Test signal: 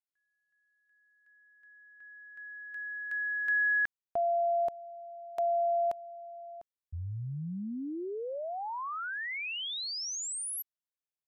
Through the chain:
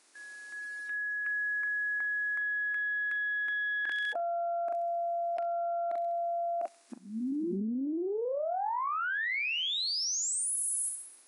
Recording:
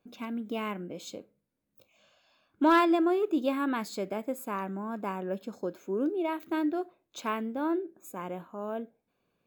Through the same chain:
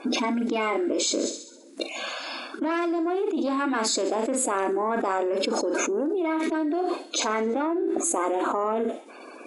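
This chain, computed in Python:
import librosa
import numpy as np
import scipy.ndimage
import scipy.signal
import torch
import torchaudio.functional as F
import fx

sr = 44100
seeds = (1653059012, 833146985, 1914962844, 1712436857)

y = fx.spec_quant(x, sr, step_db=30)
y = fx.peak_eq(y, sr, hz=3100.0, db=-5.5, octaves=0.4)
y = fx.tube_stage(y, sr, drive_db=18.0, bias=0.6)
y = fx.brickwall_bandpass(y, sr, low_hz=220.0, high_hz=11000.0)
y = fx.peak_eq(y, sr, hz=330.0, db=5.0, octaves=0.27)
y = fx.doubler(y, sr, ms=41.0, db=-10.0)
y = fx.echo_wet_highpass(y, sr, ms=66, feedback_pct=55, hz=4600.0, wet_db=-11.0)
y = fx.env_flatten(y, sr, amount_pct=100)
y = y * 10.0 ** (-3.0 / 20.0)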